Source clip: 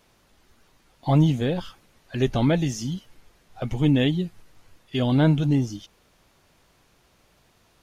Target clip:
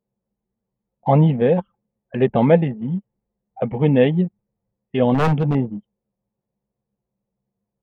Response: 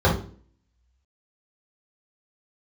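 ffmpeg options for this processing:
-filter_complex "[0:a]highpass=160,equalizer=f=200:t=q:w=4:g=8,equalizer=f=300:t=q:w=4:g=-8,equalizer=f=490:t=q:w=4:g=8,equalizer=f=840:t=q:w=4:g=4,equalizer=f=1400:t=q:w=4:g=-7,lowpass=f=2400:w=0.5412,lowpass=f=2400:w=1.3066,asettb=1/sr,asplit=3[s0][s1][s2];[s0]atrim=end=5.144[s3];[s1]atrim=start=5.14:end=5.55,asetpts=PTS-STARTPTS,afade=t=in:d=0.004:c=qsin,afade=t=out:st=0.406:d=0.004:c=qsin,aeval=exprs='0.133*(abs(mod(val(0)/0.133+3,4)-2)-1)':c=same[s4];[s2]atrim=start=5.546[s5];[s3][s4]acrossfade=d=0.004:c1=hsin:c2=qsin[s6];[s6][s5]acrossfade=d=0.004:c1=qsin:c2=hsin,anlmdn=1.58,volume=2"

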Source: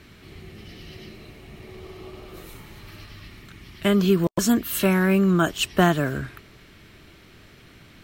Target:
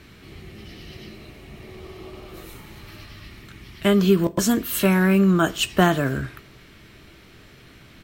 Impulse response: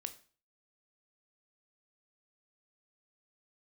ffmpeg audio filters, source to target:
-filter_complex "[0:a]asplit=2[s0][s1];[s1]adelay=15,volume=0.224[s2];[s0][s2]amix=inputs=2:normalize=0,asplit=2[s3][s4];[1:a]atrim=start_sample=2205,asetrate=40572,aresample=44100[s5];[s4][s5]afir=irnorm=-1:irlink=0,volume=0.841[s6];[s3][s6]amix=inputs=2:normalize=0,volume=0.708"

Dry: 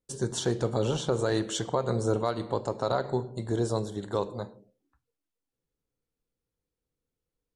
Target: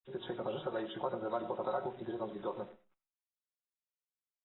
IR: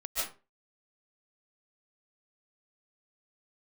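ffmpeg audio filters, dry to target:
-filter_complex "[0:a]highpass=350,aemphasis=mode=reproduction:type=riaa,aecho=1:1:5.5:0.7,acrossover=split=650[s0][s1];[s0]acompressor=threshold=0.0224:ratio=8[s2];[s2][s1]amix=inputs=2:normalize=0,acrossover=split=1800[s3][s4];[s3]adelay=30[s5];[s5][s4]amix=inputs=2:normalize=0,acrusher=bits=9:dc=4:mix=0:aa=0.000001,asplit=2[s6][s7];[1:a]atrim=start_sample=2205[s8];[s7][s8]afir=irnorm=-1:irlink=0,volume=0.106[s9];[s6][s9]amix=inputs=2:normalize=0,aresample=16000,aresample=44100,atempo=1.7,volume=0.447" -ar 22050 -c:a aac -b:a 16k

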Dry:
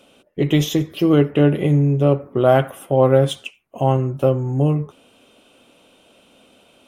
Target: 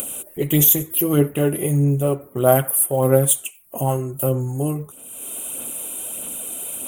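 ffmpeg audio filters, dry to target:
-af "acompressor=mode=upward:threshold=0.0562:ratio=2.5,aphaser=in_gain=1:out_gain=1:delay=3:decay=0.38:speed=1.6:type=sinusoidal,aexciter=amount=13.1:drive=9.8:freq=7800,volume=0.596"

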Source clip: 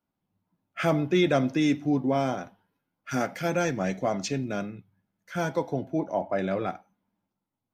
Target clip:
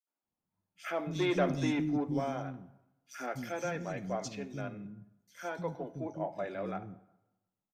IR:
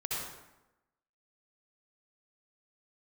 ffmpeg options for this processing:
-filter_complex "[0:a]asettb=1/sr,asplit=3[s0][s1][s2];[s0]atrim=end=1.134[s3];[s1]atrim=start=1.13:end=1.97,asetpts=PTS-STARTPTS,afade=t=in:d=0.004:c=qsin,afade=t=out:st=0.836:d=0.004:c=qsin,acontrast=33[s4];[s2]atrim=start=1.966[s5];[s3][s4]acrossfade=d=0.004:c1=hsin:c2=qsin[s6];[s6][s5]acrossfade=d=0.004:c1=qsin:c2=hsin,asoftclip=type=tanh:threshold=0.266,acrossover=split=290|3700[s7][s8][s9];[s8]adelay=70[s10];[s7]adelay=230[s11];[s11][s10][s9]amix=inputs=3:normalize=0,asplit=2[s12][s13];[1:a]atrim=start_sample=2205[s14];[s13][s14]afir=irnorm=-1:irlink=0,volume=0.0841[s15];[s12][s15]amix=inputs=2:normalize=0,volume=0.376"

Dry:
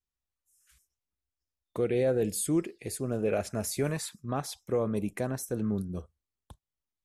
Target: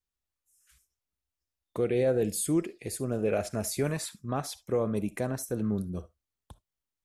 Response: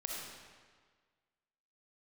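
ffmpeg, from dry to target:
-filter_complex "[0:a]asplit=2[s0][s1];[1:a]atrim=start_sample=2205,atrim=end_sample=3528[s2];[s1][s2]afir=irnorm=-1:irlink=0,volume=0.376[s3];[s0][s3]amix=inputs=2:normalize=0,volume=0.841"

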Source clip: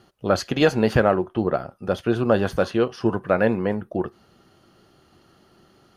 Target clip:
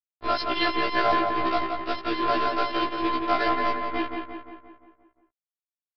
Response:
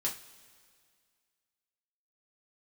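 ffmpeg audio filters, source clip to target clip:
-filter_complex "[0:a]equalizer=f=220:t=o:w=1.3:g=-8,bandreject=f=113.6:t=h:w=4,bandreject=f=227.2:t=h:w=4,bandreject=f=340.8:t=h:w=4,bandreject=f=454.4:t=h:w=4,bandreject=f=568:t=h:w=4,acrossover=split=220[s0][s1];[s0]acompressor=threshold=0.00794:ratio=6[s2];[s2][s1]amix=inputs=2:normalize=0,afftfilt=real='hypot(re,im)*cos(PI*b)':imag='0':win_size=512:overlap=0.75,acrusher=bits=4:mix=0:aa=0.5,asplit=2[s3][s4];[s4]adelay=175,lowpass=f=3200:p=1,volume=0.596,asplit=2[s5][s6];[s6]adelay=175,lowpass=f=3200:p=1,volume=0.55,asplit=2[s7][s8];[s8]adelay=175,lowpass=f=3200:p=1,volume=0.55,asplit=2[s9][s10];[s10]adelay=175,lowpass=f=3200:p=1,volume=0.55,asplit=2[s11][s12];[s12]adelay=175,lowpass=f=3200:p=1,volume=0.55,asplit=2[s13][s14];[s14]adelay=175,lowpass=f=3200:p=1,volume=0.55,asplit=2[s15][s16];[s16]adelay=175,lowpass=f=3200:p=1,volume=0.55[s17];[s5][s7][s9][s11][s13][s15][s17]amix=inputs=7:normalize=0[s18];[s3][s18]amix=inputs=2:normalize=0,aresample=11025,aresample=44100,afftfilt=real='re*1.73*eq(mod(b,3),0)':imag='im*1.73*eq(mod(b,3),0)':win_size=2048:overlap=0.75,volume=2.51"

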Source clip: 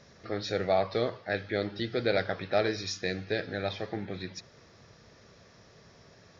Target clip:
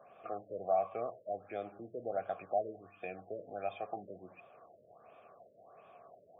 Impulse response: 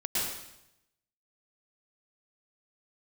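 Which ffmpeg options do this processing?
-filter_complex "[0:a]acrossover=split=230[s0][s1];[s1]acompressor=threshold=0.00708:ratio=2[s2];[s0][s2]amix=inputs=2:normalize=0,asplit=3[s3][s4][s5];[s3]bandpass=f=730:t=q:w=8,volume=1[s6];[s4]bandpass=f=1090:t=q:w=8,volume=0.501[s7];[s5]bandpass=f=2440:t=q:w=8,volume=0.355[s8];[s6][s7][s8]amix=inputs=3:normalize=0,afftfilt=real='re*lt(b*sr/1024,630*pow(3700/630,0.5+0.5*sin(2*PI*1.4*pts/sr)))':imag='im*lt(b*sr/1024,630*pow(3700/630,0.5+0.5*sin(2*PI*1.4*pts/sr)))':win_size=1024:overlap=0.75,volume=3.76"

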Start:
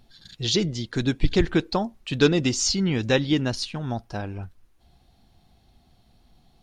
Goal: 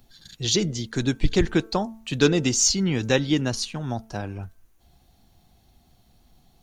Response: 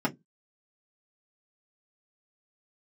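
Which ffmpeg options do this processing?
-filter_complex "[0:a]bandreject=f=5200:w=17,bandreject=f=222.6:t=h:w=4,bandreject=f=445.2:t=h:w=4,bandreject=f=667.8:t=h:w=4,bandreject=f=890.4:t=h:w=4,bandreject=f=1113:t=h:w=4,bandreject=f=1335.6:t=h:w=4,bandreject=f=1558.2:t=h:w=4,acrossover=split=140[s0][s1];[s1]aexciter=amount=1.9:drive=5.9:freq=5600[s2];[s0][s2]amix=inputs=2:normalize=0"

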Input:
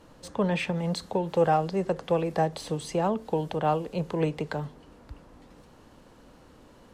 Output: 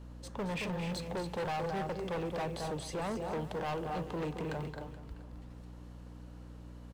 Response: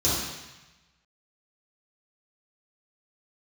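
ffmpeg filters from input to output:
-filter_complex "[0:a]asplit=2[s0][s1];[s1]aecho=0:1:221.6|265.3:0.355|0.355[s2];[s0][s2]amix=inputs=2:normalize=0,acrusher=bits=9:mode=log:mix=0:aa=0.000001,aeval=exprs='val(0)+0.00891*(sin(2*PI*60*n/s)+sin(2*PI*2*60*n/s)/2+sin(2*PI*3*60*n/s)/3+sin(2*PI*4*60*n/s)/4+sin(2*PI*5*60*n/s)/5)':c=same,asoftclip=type=hard:threshold=0.0447,asplit=2[s3][s4];[s4]aecho=0:1:427:0.141[s5];[s3][s5]amix=inputs=2:normalize=0,volume=0.501"

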